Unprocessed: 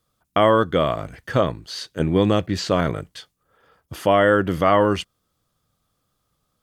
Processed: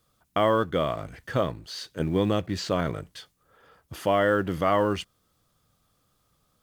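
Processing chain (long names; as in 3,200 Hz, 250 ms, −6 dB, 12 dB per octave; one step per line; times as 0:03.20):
mu-law and A-law mismatch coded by mu
level −6.5 dB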